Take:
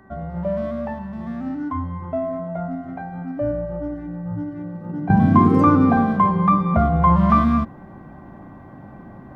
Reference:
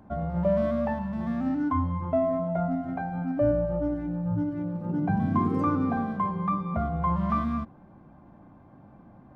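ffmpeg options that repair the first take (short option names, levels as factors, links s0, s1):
-af "bandreject=f=384.1:t=h:w=4,bandreject=f=768.2:t=h:w=4,bandreject=f=1152.3:t=h:w=4,bandreject=f=1536.4:t=h:w=4,bandreject=f=1920.5:t=h:w=4,asetnsamples=n=441:p=0,asendcmd='5.1 volume volume -11dB',volume=1"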